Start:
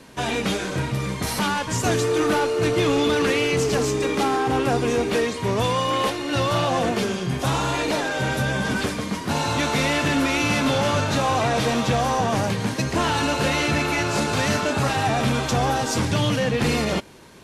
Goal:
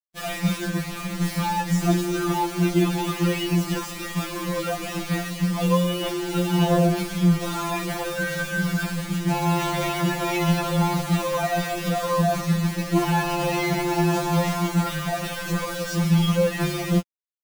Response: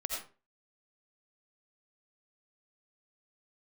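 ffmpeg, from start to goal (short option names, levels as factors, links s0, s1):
-af "highshelf=f=4400:g=-5.5,acrusher=bits=4:mix=0:aa=0.000001,bass=f=250:g=12,treble=f=4000:g=-1,afftfilt=real='re*2.83*eq(mod(b,8),0)':imag='im*2.83*eq(mod(b,8),0)':win_size=2048:overlap=0.75,volume=0.841"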